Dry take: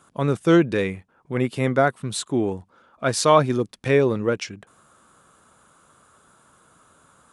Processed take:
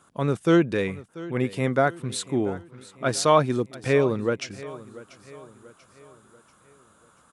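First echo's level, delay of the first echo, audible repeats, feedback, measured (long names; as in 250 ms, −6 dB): −18.0 dB, 688 ms, 3, 46%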